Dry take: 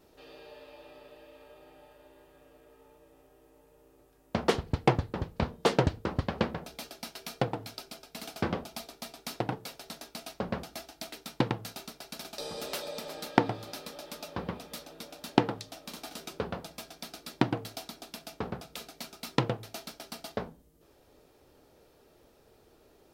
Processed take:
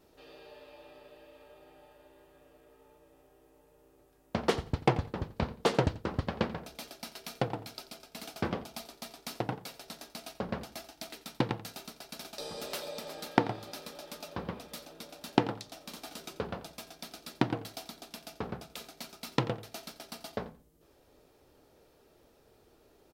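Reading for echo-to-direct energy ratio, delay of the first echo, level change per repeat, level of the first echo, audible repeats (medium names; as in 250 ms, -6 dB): -17.0 dB, 87 ms, -14.0 dB, -17.0 dB, 2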